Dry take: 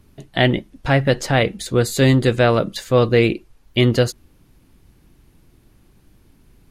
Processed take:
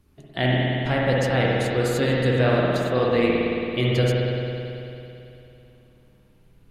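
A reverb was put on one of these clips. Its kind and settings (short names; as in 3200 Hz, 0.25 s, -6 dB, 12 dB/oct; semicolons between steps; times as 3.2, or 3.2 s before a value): spring tank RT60 3 s, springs 55 ms, chirp 45 ms, DRR -4.5 dB; gain -9 dB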